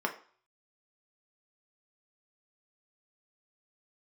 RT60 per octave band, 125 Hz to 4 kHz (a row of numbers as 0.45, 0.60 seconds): 0.30, 0.40, 0.40, 0.50, 0.45, 0.45 seconds